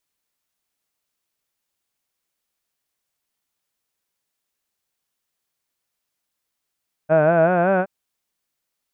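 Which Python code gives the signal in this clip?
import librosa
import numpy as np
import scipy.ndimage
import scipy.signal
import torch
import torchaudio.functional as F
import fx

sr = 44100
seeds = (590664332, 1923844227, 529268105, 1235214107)

y = fx.formant_vowel(sr, seeds[0], length_s=0.77, hz=151.0, glide_st=4.5, vibrato_hz=5.3, vibrato_st=0.9, f1_hz=640.0, f2_hz=1500.0, f3_hz=2500.0)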